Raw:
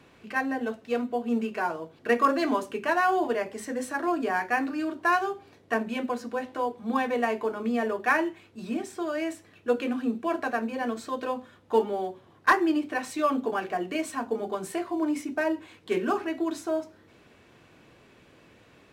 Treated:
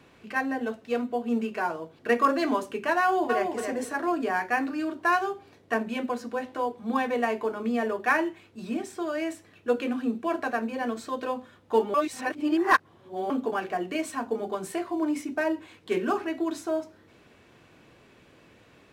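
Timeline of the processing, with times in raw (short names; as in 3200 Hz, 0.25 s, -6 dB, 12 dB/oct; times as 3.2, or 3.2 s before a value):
3.01–3.57 echo throw 0.28 s, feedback 20%, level -5 dB
11.94–13.3 reverse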